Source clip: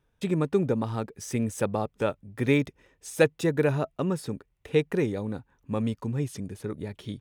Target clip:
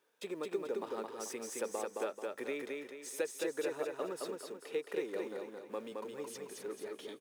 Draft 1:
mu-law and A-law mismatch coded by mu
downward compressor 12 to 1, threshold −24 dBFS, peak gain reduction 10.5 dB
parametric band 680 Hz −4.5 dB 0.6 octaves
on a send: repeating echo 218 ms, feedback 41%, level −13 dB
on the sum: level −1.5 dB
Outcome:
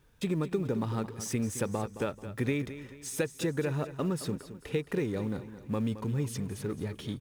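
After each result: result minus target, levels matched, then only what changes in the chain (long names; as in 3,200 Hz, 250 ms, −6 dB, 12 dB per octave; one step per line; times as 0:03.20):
echo-to-direct −10 dB; 250 Hz band +6.0 dB
change: repeating echo 218 ms, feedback 41%, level −3 dB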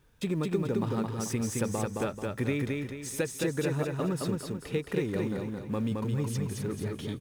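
250 Hz band +6.0 dB
add after downward compressor: four-pole ladder high-pass 340 Hz, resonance 30%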